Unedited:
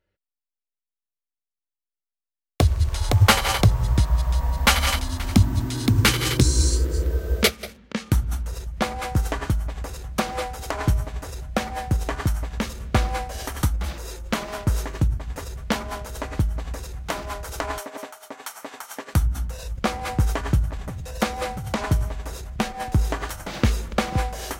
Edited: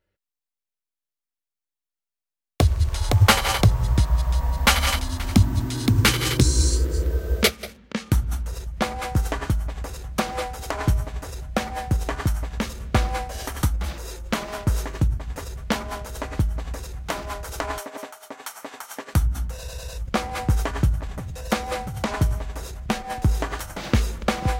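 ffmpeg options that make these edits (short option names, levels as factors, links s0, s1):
-filter_complex "[0:a]asplit=4[s0][s1][s2][s3];[s0]atrim=end=19.682[s4];[s1]atrim=start=19.578:end=19.682[s5];[s2]atrim=start=19.578:end=19.682[s6];[s3]atrim=start=19.578[s7];[s4][s5]acrossfade=d=0.004:c1=hsin:c2=hsin[s8];[s8][s6]acrossfade=d=0.004:c1=hsin:c2=hsin[s9];[s9][s7]acrossfade=d=0.004:c1=hsin:c2=hsin"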